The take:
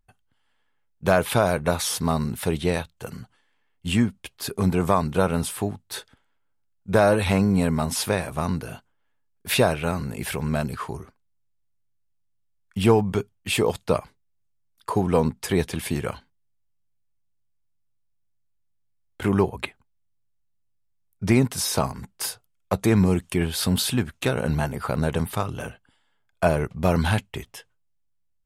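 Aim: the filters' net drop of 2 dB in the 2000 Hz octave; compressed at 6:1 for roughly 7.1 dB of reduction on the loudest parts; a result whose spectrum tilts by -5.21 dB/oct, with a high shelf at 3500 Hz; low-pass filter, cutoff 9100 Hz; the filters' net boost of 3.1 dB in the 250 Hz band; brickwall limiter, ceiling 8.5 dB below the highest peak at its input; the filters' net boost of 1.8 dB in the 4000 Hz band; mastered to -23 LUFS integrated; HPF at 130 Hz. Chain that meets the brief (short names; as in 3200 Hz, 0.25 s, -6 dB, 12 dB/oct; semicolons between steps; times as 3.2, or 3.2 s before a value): HPF 130 Hz; LPF 9100 Hz; bell 250 Hz +5 dB; bell 2000 Hz -3 dB; high shelf 3500 Hz -6.5 dB; bell 4000 Hz +7.5 dB; compressor 6:1, threshold -19 dBFS; gain +6 dB; limiter -10 dBFS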